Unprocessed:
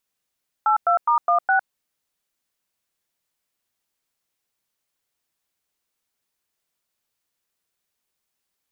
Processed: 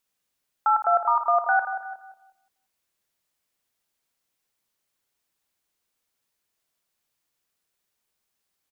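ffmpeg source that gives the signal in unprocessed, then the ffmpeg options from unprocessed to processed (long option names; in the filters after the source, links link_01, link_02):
-f lavfi -i "aevalsrc='0.133*clip(min(mod(t,0.207),0.106-mod(t,0.207))/0.002,0,1)*(eq(floor(t/0.207),0)*(sin(2*PI*852*mod(t,0.207))+sin(2*PI*1336*mod(t,0.207)))+eq(floor(t/0.207),1)*(sin(2*PI*697*mod(t,0.207))+sin(2*PI*1336*mod(t,0.207)))+eq(floor(t/0.207),2)*(sin(2*PI*941*mod(t,0.207))+sin(2*PI*1209*mod(t,0.207)))+eq(floor(t/0.207),3)*(sin(2*PI*697*mod(t,0.207))+sin(2*PI*1209*mod(t,0.207)))+eq(floor(t/0.207),4)*(sin(2*PI*770*mod(t,0.207))+sin(2*PI*1477*mod(t,0.207))))':duration=1.035:sample_rate=44100"
-filter_complex "[0:a]asplit=2[link_01][link_02];[link_02]adelay=182,lowpass=frequency=1100:poles=1,volume=-9.5dB,asplit=2[link_03][link_04];[link_04]adelay=182,lowpass=frequency=1100:poles=1,volume=0.36,asplit=2[link_05][link_06];[link_06]adelay=182,lowpass=frequency=1100:poles=1,volume=0.36,asplit=2[link_07][link_08];[link_08]adelay=182,lowpass=frequency=1100:poles=1,volume=0.36[link_09];[link_03][link_05][link_07][link_09]amix=inputs=4:normalize=0[link_10];[link_01][link_10]amix=inputs=2:normalize=0,alimiter=limit=-13dB:level=0:latency=1:release=37,asplit=2[link_11][link_12];[link_12]aecho=0:1:56|342:0.316|0.119[link_13];[link_11][link_13]amix=inputs=2:normalize=0"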